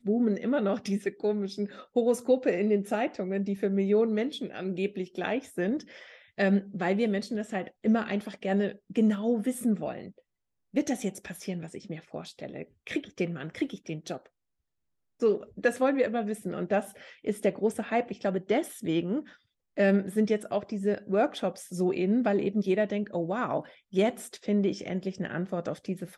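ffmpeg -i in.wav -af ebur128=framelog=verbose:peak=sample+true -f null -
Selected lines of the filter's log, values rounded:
Integrated loudness:
  I:         -29.4 LUFS
  Threshold: -39.8 LUFS
Loudness range:
  LRA:         7.3 LU
  Threshold: -49.9 LUFS
  LRA low:   -35.3 LUFS
  LRA high:  -28.0 LUFS
Sample peak:
  Peak:      -12.6 dBFS
True peak:
  Peak:      -12.6 dBFS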